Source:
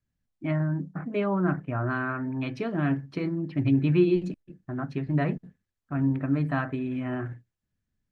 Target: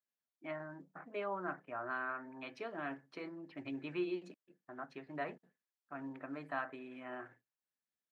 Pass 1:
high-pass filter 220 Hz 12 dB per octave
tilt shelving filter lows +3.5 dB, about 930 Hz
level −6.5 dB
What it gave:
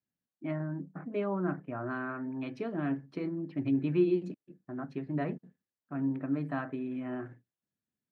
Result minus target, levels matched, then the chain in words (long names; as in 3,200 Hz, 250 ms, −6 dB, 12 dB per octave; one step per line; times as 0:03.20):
250 Hz band +4.5 dB
high-pass filter 680 Hz 12 dB per octave
tilt shelving filter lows +3.5 dB, about 930 Hz
level −6.5 dB